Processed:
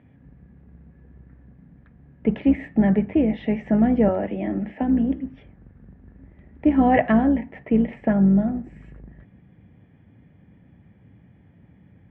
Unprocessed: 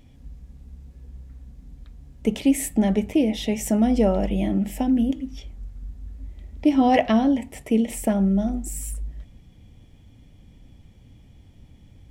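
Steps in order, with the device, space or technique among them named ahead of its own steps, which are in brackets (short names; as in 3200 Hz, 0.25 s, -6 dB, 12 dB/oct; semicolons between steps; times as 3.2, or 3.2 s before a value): 4.08–5.16 steep high-pass 220 Hz 48 dB/oct; sub-octave bass pedal (octaver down 2 oct, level -5 dB; speaker cabinet 77–2200 Hz, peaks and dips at 82 Hz -6 dB, 180 Hz +5 dB, 1700 Hz +8 dB)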